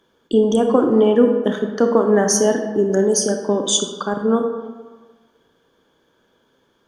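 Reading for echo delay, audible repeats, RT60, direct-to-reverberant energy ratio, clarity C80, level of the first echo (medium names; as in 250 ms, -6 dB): no echo, no echo, 1.4 s, 4.5 dB, 8.0 dB, no echo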